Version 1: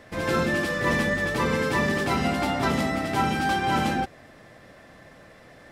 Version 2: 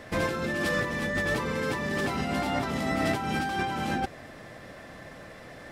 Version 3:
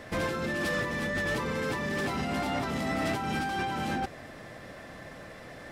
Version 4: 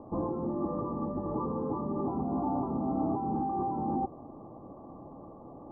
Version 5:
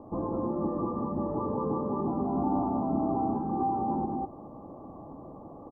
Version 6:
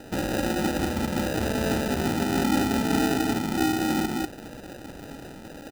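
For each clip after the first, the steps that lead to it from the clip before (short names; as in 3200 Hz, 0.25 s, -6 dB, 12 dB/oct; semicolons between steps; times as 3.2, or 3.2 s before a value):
negative-ratio compressor -29 dBFS, ratio -1
soft clip -24 dBFS, distortion -15 dB
rippled Chebyshev low-pass 1200 Hz, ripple 9 dB; gain +4.5 dB
loudspeakers at several distances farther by 14 m -11 dB, 67 m -2 dB
sample-rate reducer 1100 Hz, jitter 0%; gain +4.5 dB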